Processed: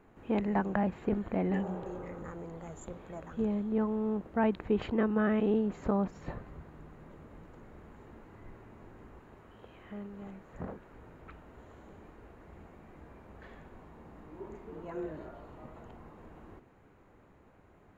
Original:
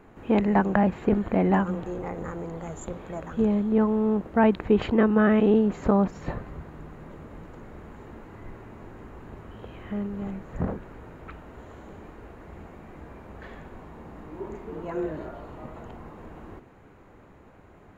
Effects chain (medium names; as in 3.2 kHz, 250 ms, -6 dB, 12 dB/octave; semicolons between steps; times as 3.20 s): 1.55–2.19 s: spectral replace 370–1700 Hz both; 9.19–10.93 s: bass shelf 250 Hz -7 dB; trim -8.5 dB